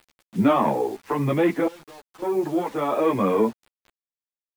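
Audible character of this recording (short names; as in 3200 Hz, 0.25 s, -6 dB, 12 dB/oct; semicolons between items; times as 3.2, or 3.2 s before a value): random-step tremolo 1.8 Hz, depth 95%; a quantiser's noise floor 8-bit, dither none; a shimmering, thickened sound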